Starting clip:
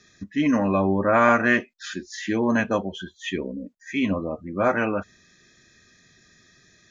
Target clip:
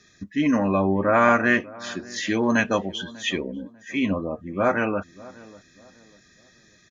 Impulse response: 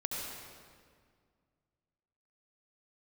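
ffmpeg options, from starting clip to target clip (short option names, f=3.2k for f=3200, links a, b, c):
-filter_complex "[0:a]asettb=1/sr,asplit=3[a][b][c];[a]atrim=end=2.164[d];[b]atrim=start=2.16:end=3.42,asetpts=PTS-STARTPTS,afade=t=in:d=0.004:c=qsin,afade=t=out:st=1.256:d=0.004:c=qsin,equalizer=f=4.7k:t=o:w=2.4:g=7.5[e];[c]atrim=start=3.416[f];[d][e]acrossfade=d=0.004:c1=hsin:c2=qsin[g];[g][f]acrossfade=d=0.004:c1=qsin:c2=hsin,asplit=2[h][i];[i]adelay=594,lowpass=f=1.1k:p=1,volume=-20dB,asplit=2[j][k];[k]adelay=594,lowpass=f=1.1k:p=1,volume=0.37,asplit=2[l][m];[m]adelay=594,lowpass=f=1.1k:p=1,volume=0.37[n];[j][l][n]amix=inputs=3:normalize=0[o];[h][o]amix=inputs=2:normalize=0"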